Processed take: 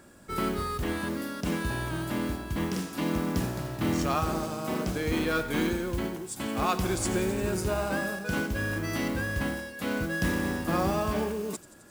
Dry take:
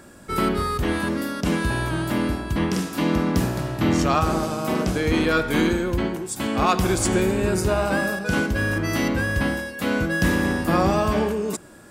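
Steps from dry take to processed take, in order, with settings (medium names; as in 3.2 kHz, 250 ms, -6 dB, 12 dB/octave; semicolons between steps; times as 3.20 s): feedback echo behind a high-pass 87 ms, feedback 76%, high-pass 4.1 kHz, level -14 dB; modulation noise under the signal 20 dB; trim -7.5 dB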